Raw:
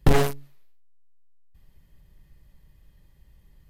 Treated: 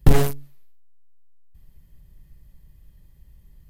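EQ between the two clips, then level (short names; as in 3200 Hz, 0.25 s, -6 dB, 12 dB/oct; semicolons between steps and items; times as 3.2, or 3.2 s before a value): low shelf 280 Hz +8.5 dB; high shelf 7600 Hz +10 dB; -3.0 dB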